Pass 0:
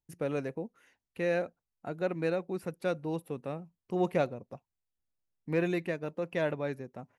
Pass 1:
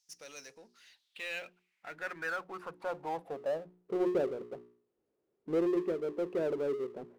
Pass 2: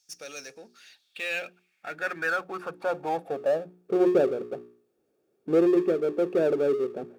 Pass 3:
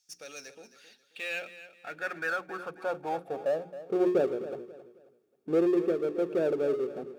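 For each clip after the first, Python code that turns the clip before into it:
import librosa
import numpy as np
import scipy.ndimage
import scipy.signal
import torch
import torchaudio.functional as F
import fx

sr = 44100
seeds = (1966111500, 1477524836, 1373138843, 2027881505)

y1 = fx.filter_sweep_bandpass(x, sr, from_hz=5600.0, to_hz=400.0, start_s=0.51, end_s=4.03, q=5.3)
y1 = fx.hum_notches(y1, sr, base_hz=60, count=7)
y1 = fx.power_curve(y1, sr, exponent=0.7)
y1 = y1 * 10.0 ** (6.0 / 20.0)
y2 = fx.notch_comb(y1, sr, f0_hz=1000.0)
y2 = y2 * 10.0 ** (9.0 / 20.0)
y3 = fx.echo_feedback(y2, sr, ms=268, feedback_pct=32, wet_db=-14.0)
y3 = y3 * 10.0 ** (-4.0 / 20.0)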